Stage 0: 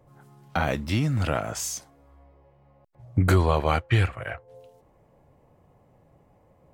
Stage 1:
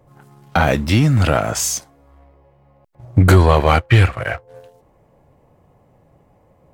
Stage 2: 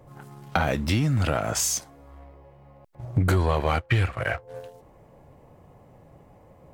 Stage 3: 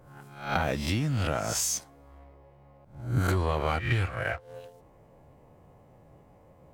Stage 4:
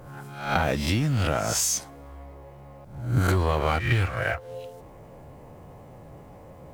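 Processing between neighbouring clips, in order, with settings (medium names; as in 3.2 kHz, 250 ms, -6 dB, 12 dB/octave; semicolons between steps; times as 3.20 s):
waveshaping leveller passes 1; trim +7 dB
compression 3:1, threshold -26 dBFS, peak gain reduction 14 dB; trim +2 dB
reverse spectral sustain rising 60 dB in 0.48 s; trim -5.5 dB
companding laws mixed up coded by mu; trim +3 dB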